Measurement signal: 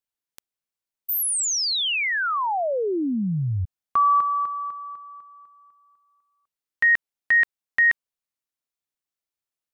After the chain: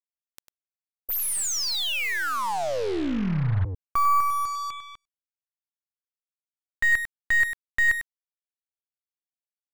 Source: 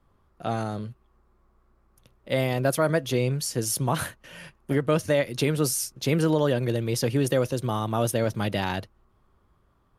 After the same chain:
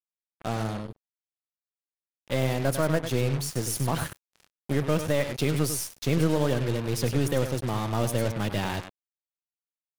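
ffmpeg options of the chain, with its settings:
ffmpeg -i in.wav -af "aecho=1:1:99:0.335,aeval=exprs='0.376*(cos(1*acos(clip(val(0)/0.376,-1,1)))-cos(1*PI/2))+0.0168*(cos(6*acos(clip(val(0)/0.376,-1,1)))-cos(6*PI/2))':channel_layout=same,lowshelf=frequency=98:gain=10,acrusher=bits=4:mix=0:aa=0.5,volume=-4dB" out.wav

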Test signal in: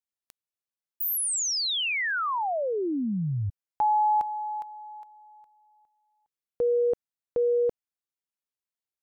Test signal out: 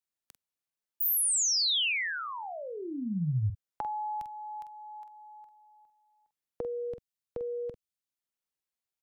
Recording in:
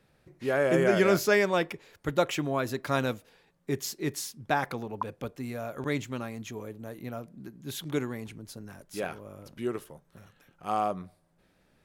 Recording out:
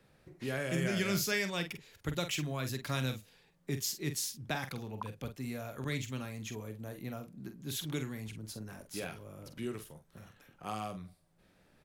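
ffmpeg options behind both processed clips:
ffmpeg -i in.wav -filter_complex "[0:a]acrossover=split=190|2200[link_01][link_02][link_03];[link_02]acompressor=threshold=-46dB:ratio=2.5:attack=30:release=840:knee=2.83:detection=peak[link_04];[link_01][link_04][link_03]amix=inputs=3:normalize=0,asplit=2[link_05][link_06];[link_06]adelay=46,volume=-9dB[link_07];[link_05][link_07]amix=inputs=2:normalize=0" out.wav

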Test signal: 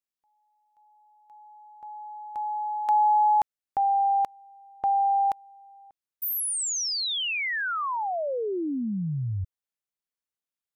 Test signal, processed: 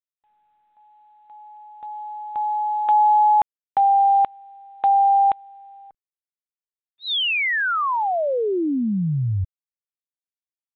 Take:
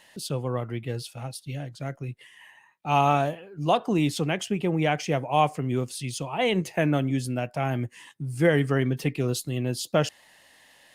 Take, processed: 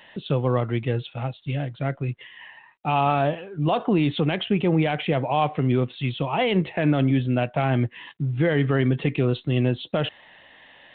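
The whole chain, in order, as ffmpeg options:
ffmpeg -i in.wav -af "alimiter=limit=-19dB:level=0:latency=1:release=54,volume=7dB" -ar 8000 -c:a adpcm_g726 -b:a 40k out.wav

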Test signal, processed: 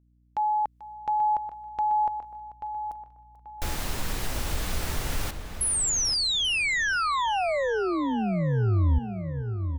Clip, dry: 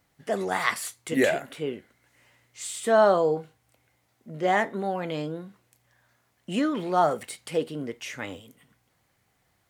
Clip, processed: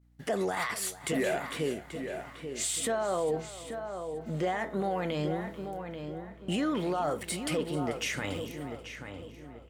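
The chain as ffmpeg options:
ffmpeg -i in.wav -filter_complex "[0:a]agate=range=-33dB:threshold=-57dB:ratio=3:detection=peak,acompressor=threshold=-36dB:ratio=2,alimiter=level_in=3.5dB:limit=-24dB:level=0:latency=1:release=12,volume=-3.5dB,asplit=2[link_01][link_02];[link_02]aecho=0:1:439|878|1317|1756:0.141|0.065|0.0299|0.0137[link_03];[link_01][link_03]amix=inputs=2:normalize=0,aeval=exprs='val(0)+0.000398*(sin(2*PI*60*n/s)+sin(2*PI*2*60*n/s)/2+sin(2*PI*3*60*n/s)/3+sin(2*PI*4*60*n/s)/4+sin(2*PI*5*60*n/s)/5)':channel_layout=same,asubboost=boost=2:cutoff=120,asplit=2[link_04][link_05];[link_05]adelay=835,lowpass=frequency=2500:poles=1,volume=-7.5dB,asplit=2[link_06][link_07];[link_07]adelay=835,lowpass=frequency=2500:poles=1,volume=0.36,asplit=2[link_08][link_09];[link_09]adelay=835,lowpass=frequency=2500:poles=1,volume=0.36,asplit=2[link_10][link_11];[link_11]adelay=835,lowpass=frequency=2500:poles=1,volume=0.36[link_12];[link_06][link_08][link_10][link_12]amix=inputs=4:normalize=0[link_13];[link_04][link_13]amix=inputs=2:normalize=0,volume=6dB" out.wav

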